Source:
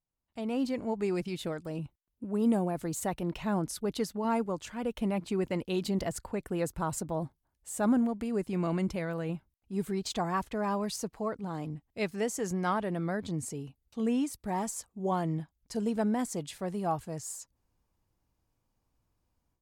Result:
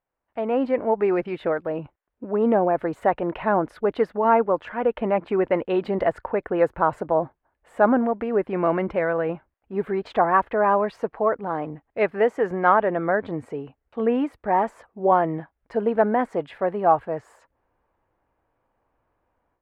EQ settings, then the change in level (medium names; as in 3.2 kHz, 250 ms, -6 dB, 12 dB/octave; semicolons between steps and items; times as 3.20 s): FFT filter 180 Hz 0 dB, 540 Hz +15 dB, 1.1 kHz +13 dB, 1.7 kHz +14 dB, 2.9 kHz +2 dB, 6.4 kHz -23 dB; 0.0 dB